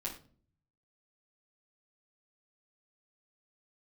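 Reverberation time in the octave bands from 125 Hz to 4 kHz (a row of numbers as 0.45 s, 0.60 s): 1.0 s, 0.70 s, 0.50 s, 0.35 s, 0.35 s, 0.30 s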